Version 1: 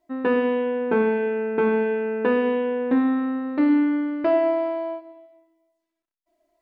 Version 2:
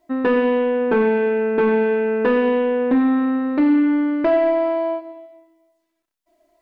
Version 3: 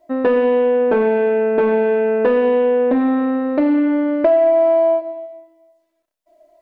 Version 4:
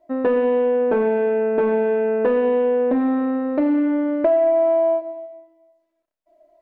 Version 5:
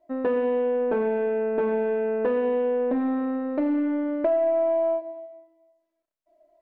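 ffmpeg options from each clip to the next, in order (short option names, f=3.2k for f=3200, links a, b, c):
-filter_complex "[0:a]asplit=2[a][b];[b]acompressor=threshold=-27dB:ratio=6,volume=-1dB[c];[a][c]amix=inputs=2:normalize=0,asoftclip=type=tanh:threshold=-11.5dB,volume=2.5dB"
-af "equalizer=f=600:w=2.7:g=13,acompressor=threshold=-11dB:ratio=6"
-af "highshelf=f=3k:g=-9,volume=-3dB"
-af "aeval=exprs='0.447*(cos(1*acos(clip(val(0)/0.447,-1,1)))-cos(1*PI/2))+0.00282*(cos(6*acos(clip(val(0)/0.447,-1,1)))-cos(6*PI/2))':c=same,volume=-5.5dB"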